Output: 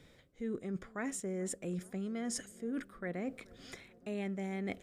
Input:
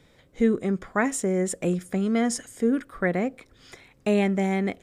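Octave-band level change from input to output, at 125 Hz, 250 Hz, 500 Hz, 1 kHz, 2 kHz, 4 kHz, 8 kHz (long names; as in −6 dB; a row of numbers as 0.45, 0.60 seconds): −13.5, −14.0, −15.0, −16.5, −14.5, −10.5, −9.5 decibels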